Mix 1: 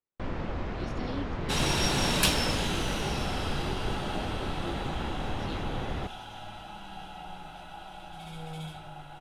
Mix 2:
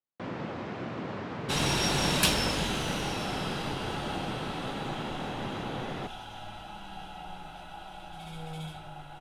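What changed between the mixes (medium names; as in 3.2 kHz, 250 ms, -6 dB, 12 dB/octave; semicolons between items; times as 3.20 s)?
speech: muted; first sound: add high-pass 120 Hz 24 dB/octave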